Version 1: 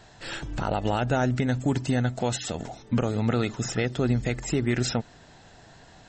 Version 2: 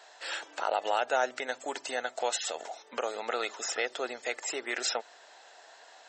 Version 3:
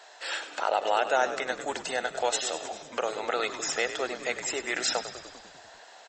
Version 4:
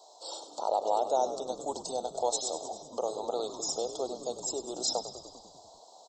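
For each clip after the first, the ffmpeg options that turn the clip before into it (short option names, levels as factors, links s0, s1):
-af "highpass=f=510:w=0.5412,highpass=f=510:w=1.3066"
-filter_complex "[0:a]asplit=9[s0][s1][s2][s3][s4][s5][s6][s7][s8];[s1]adelay=99,afreqshift=-56,volume=0.266[s9];[s2]adelay=198,afreqshift=-112,volume=0.17[s10];[s3]adelay=297,afreqshift=-168,volume=0.108[s11];[s4]adelay=396,afreqshift=-224,volume=0.07[s12];[s5]adelay=495,afreqshift=-280,volume=0.0447[s13];[s6]adelay=594,afreqshift=-336,volume=0.0285[s14];[s7]adelay=693,afreqshift=-392,volume=0.0182[s15];[s8]adelay=792,afreqshift=-448,volume=0.0117[s16];[s0][s9][s10][s11][s12][s13][s14][s15][s16]amix=inputs=9:normalize=0,volume=1.41"
-af "asuperstop=centerf=2000:order=8:qfactor=0.68,volume=0.841"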